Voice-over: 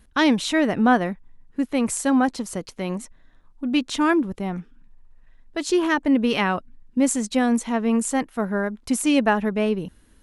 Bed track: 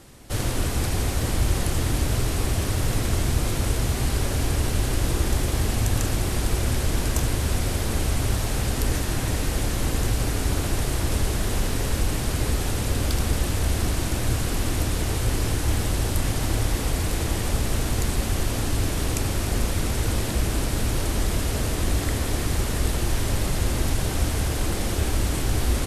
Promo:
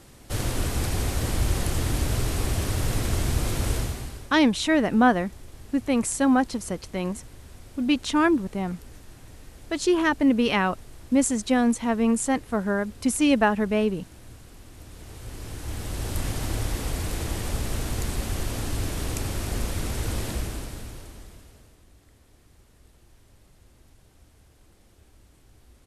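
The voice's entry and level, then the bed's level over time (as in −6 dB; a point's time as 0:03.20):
4.15 s, −1.0 dB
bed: 0:03.77 −2 dB
0:04.37 −22.5 dB
0:14.70 −22.5 dB
0:16.19 −4.5 dB
0:20.31 −4.5 dB
0:21.86 −32.5 dB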